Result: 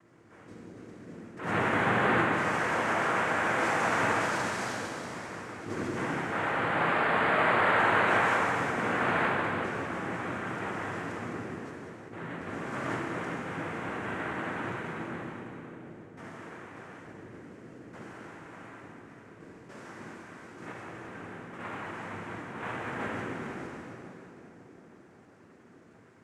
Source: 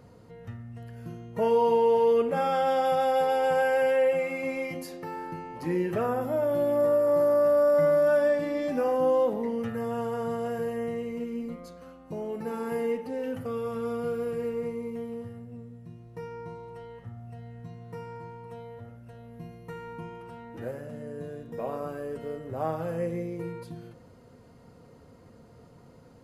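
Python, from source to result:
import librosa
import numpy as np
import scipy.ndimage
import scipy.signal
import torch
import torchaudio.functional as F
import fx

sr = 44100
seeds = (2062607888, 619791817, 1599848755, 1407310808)

y = fx.noise_vocoder(x, sr, seeds[0], bands=3)
y = fx.echo_split(y, sr, split_hz=690.0, low_ms=715, high_ms=185, feedback_pct=52, wet_db=-12.5)
y = fx.rev_plate(y, sr, seeds[1], rt60_s=2.8, hf_ratio=0.95, predelay_ms=0, drr_db=-3.0)
y = fx.attack_slew(y, sr, db_per_s=110.0)
y = F.gain(torch.from_numpy(y), -8.5).numpy()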